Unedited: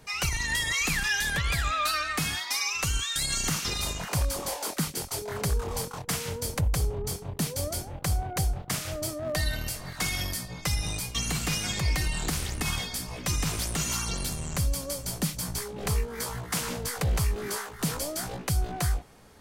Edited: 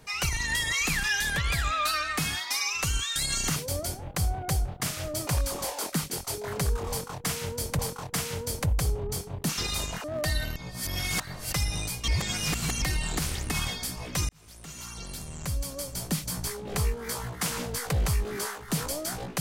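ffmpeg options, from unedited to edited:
ffmpeg -i in.wav -filter_complex "[0:a]asplit=11[link_01][link_02][link_03][link_04][link_05][link_06][link_07][link_08][link_09][link_10][link_11];[link_01]atrim=end=3.562[link_12];[link_02]atrim=start=7.438:end=9.152[link_13];[link_03]atrim=start=4.108:end=6.632[link_14];[link_04]atrim=start=5.738:end=7.442[link_15];[link_05]atrim=start=3.558:end=4.112[link_16];[link_06]atrim=start=9.148:end=9.672[link_17];[link_07]atrim=start=9.668:end=10.642,asetpts=PTS-STARTPTS,areverse[link_18];[link_08]atrim=start=10.638:end=11.192[link_19];[link_09]atrim=start=11.188:end=11.932,asetpts=PTS-STARTPTS,areverse[link_20];[link_10]atrim=start=11.928:end=13.4,asetpts=PTS-STARTPTS,afade=type=out:start_time=1.468:duration=0.004:curve=hsin[link_21];[link_11]atrim=start=13.4,asetpts=PTS-STARTPTS,afade=type=in:duration=1.94[link_22];[link_12][link_13]acrossfade=duration=0.004:curve1=hsin:curve2=hsin[link_23];[link_23][link_14]acrossfade=duration=0.004:curve1=hsin:curve2=hsin[link_24];[link_24][link_15]acrossfade=duration=0.004:curve1=hsin:curve2=hsin[link_25];[link_25][link_16]acrossfade=duration=0.004:curve1=hsin:curve2=hsin[link_26];[link_26][link_17]acrossfade=duration=0.004:curve1=hsin:curve2=hsin[link_27];[link_27][link_18]acrossfade=duration=0.004:curve1=hsin:curve2=hsin[link_28];[link_28][link_19]acrossfade=duration=0.004:curve1=hsin:curve2=hsin[link_29];[link_29][link_20]acrossfade=duration=0.004:curve1=hsin:curve2=hsin[link_30];[link_21][link_22]concat=n=2:v=0:a=1[link_31];[link_30][link_31]acrossfade=duration=0.004:curve1=hsin:curve2=hsin" out.wav

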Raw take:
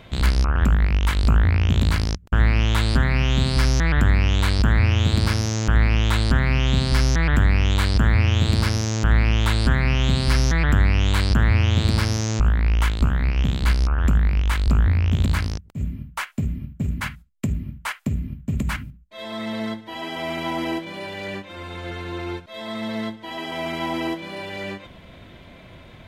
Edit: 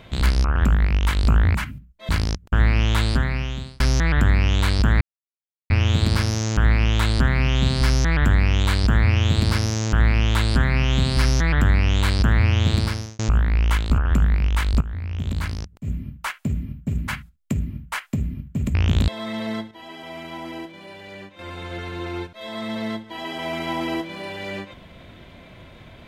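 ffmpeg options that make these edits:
ffmpeg -i in.wav -filter_complex "[0:a]asplit=12[link_01][link_02][link_03][link_04][link_05][link_06][link_07][link_08][link_09][link_10][link_11][link_12];[link_01]atrim=end=1.552[link_13];[link_02]atrim=start=18.668:end=19.212[link_14];[link_03]atrim=start=1.888:end=3.6,asetpts=PTS-STARTPTS,afade=type=out:start_time=0.942:duration=0.77[link_15];[link_04]atrim=start=3.6:end=4.81,asetpts=PTS-STARTPTS,afade=type=in:duration=0.004:curve=hsin,afade=type=out:start_time=1.206:duration=0.004:curve=hsin,apad=pad_dur=0.69[link_16];[link_05]atrim=start=4.81:end=12.3,asetpts=PTS-STARTPTS,afade=type=in:duration=0.004:curve=hsin,afade=type=out:start_time=7.04:duration=0.45[link_17];[link_06]atrim=start=12.3:end=13.092,asetpts=PTS-STARTPTS,afade=type=in:duration=0.004:curve=hsin[link_18];[link_07]atrim=start=13.908:end=14.74,asetpts=PTS-STARTPTS,afade=type=out:start_time=0.828:duration=0.004:curve=hsin:silence=0.158489[link_19];[link_08]atrim=start=14.74:end=18.672,asetpts=PTS-STARTPTS,afade=type=in:duration=1.17:silence=0.158489[link_20];[link_09]atrim=start=1.548:end=1.892[link_21];[link_10]atrim=start=19.208:end=19.842[link_22];[link_11]atrim=start=19.838:end=21.522,asetpts=PTS-STARTPTS,volume=-8dB[link_23];[link_12]atrim=start=21.518[link_24];[link_13][link_14]acrossfade=duration=0.004:curve1=hsin:curve2=hsin[link_25];[link_15][link_16][link_17][link_18]concat=n=4:v=0:a=1[link_26];[link_25][link_26]acrossfade=duration=0.004:curve1=hsin:curve2=hsin[link_27];[link_19][link_20]concat=n=2:v=0:a=1[link_28];[link_27][link_28]acrossfade=duration=0.004:curve1=hsin:curve2=hsin[link_29];[link_29][link_21]acrossfade=duration=0.004:curve1=hsin:curve2=hsin[link_30];[link_30][link_22]acrossfade=duration=0.004:curve1=hsin:curve2=hsin[link_31];[link_31][link_23]acrossfade=duration=0.004:curve1=hsin:curve2=hsin[link_32];[link_32][link_24]acrossfade=duration=0.004:curve1=hsin:curve2=hsin" out.wav

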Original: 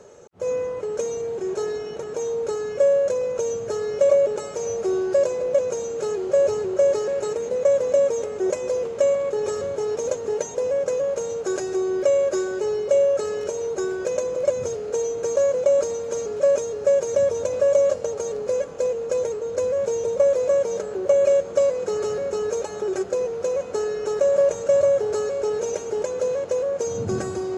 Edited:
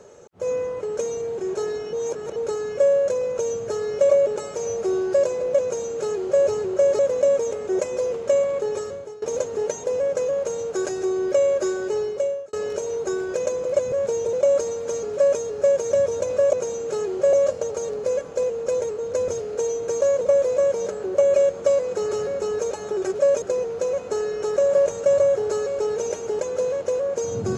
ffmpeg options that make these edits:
ffmpeg -i in.wav -filter_complex "[0:a]asplit=14[link_01][link_02][link_03][link_04][link_05][link_06][link_07][link_08][link_09][link_10][link_11][link_12][link_13][link_14];[link_01]atrim=end=1.932[link_15];[link_02]atrim=start=1.928:end=2.362,asetpts=PTS-STARTPTS,areverse[link_16];[link_03]atrim=start=2.358:end=6.992[link_17];[link_04]atrim=start=7.698:end=9.93,asetpts=PTS-STARTPTS,afade=type=out:start_time=1.632:duration=0.6:silence=0.1[link_18];[link_05]atrim=start=9.93:end=13.24,asetpts=PTS-STARTPTS,afade=type=in:duration=0.004:curve=hsin:silence=0.1,afade=type=out:start_time=2.76:duration=0.55[link_19];[link_06]atrim=start=13.24:end=14.632,asetpts=PTS-STARTPTS,afade=type=in:duration=0.004:curve=hsin[link_20];[link_07]atrim=start=19.708:end=20.122[link_21];[link_08]atrim=start=15.558:end=17.762[link_22];[link_09]atrim=start=5.628:end=6.432[link_23];[link_10]atrim=start=17.758:end=19.712[link_24];[link_11]atrim=start=14.628:end=15.562[link_25];[link_12]atrim=start=20.118:end=23.052[link_26];[link_13]atrim=start=16.348:end=16.632[link_27];[link_14]atrim=start=23.048[link_28];[link_15][link_16]acrossfade=duration=0.004:curve1=hsin:curve2=hsin[link_29];[link_29][link_17]acrossfade=duration=0.004:curve1=hsin:curve2=hsin[link_30];[link_18][link_19][link_20]concat=n=3:v=0:a=1[link_31];[link_30][link_31]acrossfade=duration=0.004:curve1=hsin:curve2=hsin[link_32];[link_32][link_21]acrossfade=duration=0.004:curve1=hsin:curve2=hsin[link_33];[link_33][link_22]acrossfade=duration=0.004:curve1=hsin:curve2=hsin[link_34];[link_34][link_23]acrossfade=duration=0.004:curve1=hsin:curve2=hsin[link_35];[link_35][link_24]acrossfade=duration=0.004:curve1=hsin:curve2=hsin[link_36];[link_36][link_25]acrossfade=duration=0.004:curve1=hsin:curve2=hsin[link_37];[link_37][link_26]acrossfade=duration=0.004:curve1=hsin:curve2=hsin[link_38];[link_38][link_27]acrossfade=duration=0.004:curve1=hsin:curve2=hsin[link_39];[link_39][link_28]acrossfade=duration=0.004:curve1=hsin:curve2=hsin" out.wav

